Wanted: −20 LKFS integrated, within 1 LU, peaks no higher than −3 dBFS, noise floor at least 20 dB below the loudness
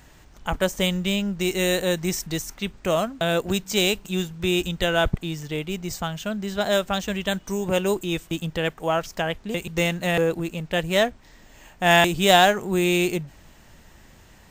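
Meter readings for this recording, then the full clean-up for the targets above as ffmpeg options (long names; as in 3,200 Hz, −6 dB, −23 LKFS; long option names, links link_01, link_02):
integrated loudness −23.5 LKFS; sample peak −3.5 dBFS; target loudness −20.0 LKFS
→ -af "volume=3.5dB,alimiter=limit=-3dB:level=0:latency=1"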